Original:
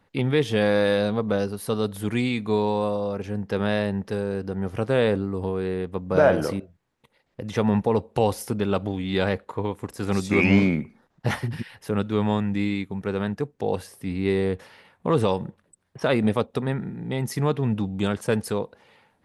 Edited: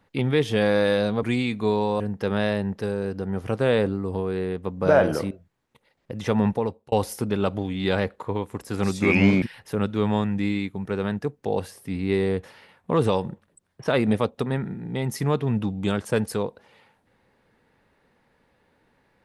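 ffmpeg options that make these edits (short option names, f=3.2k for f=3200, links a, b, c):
-filter_complex "[0:a]asplit=5[a][b][c][d][e];[a]atrim=end=1.232[f];[b]atrim=start=2.088:end=2.862[g];[c]atrim=start=3.288:end=8.21,asetpts=PTS-STARTPTS,afade=t=out:st=4.472:d=0.45[h];[d]atrim=start=8.21:end=10.712,asetpts=PTS-STARTPTS,afade=t=in:d=0.004:c=hsin[i];[e]atrim=start=11.578[j];[f][g]acrossfade=d=0.004:c1=hsin:c2=hsin[k];[h][i]concat=n=2:v=0:a=1[l];[k][l]acrossfade=d=0.004:c1=hsin:c2=hsin[m];[m][j]acrossfade=d=0.004:c1=hsin:c2=hsin"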